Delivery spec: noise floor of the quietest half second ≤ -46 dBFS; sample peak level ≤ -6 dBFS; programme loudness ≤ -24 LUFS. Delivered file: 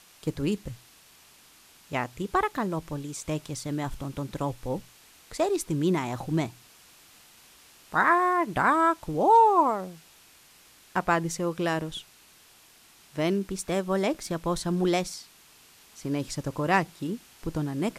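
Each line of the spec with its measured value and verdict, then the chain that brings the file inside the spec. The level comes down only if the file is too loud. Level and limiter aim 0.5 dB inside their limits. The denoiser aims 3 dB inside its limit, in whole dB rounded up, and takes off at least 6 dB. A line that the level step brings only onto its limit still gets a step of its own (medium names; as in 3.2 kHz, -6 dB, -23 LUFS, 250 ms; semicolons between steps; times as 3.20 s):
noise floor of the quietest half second -56 dBFS: pass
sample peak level -10.0 dBFS: pass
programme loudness -27.5 LUFS: pass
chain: none needed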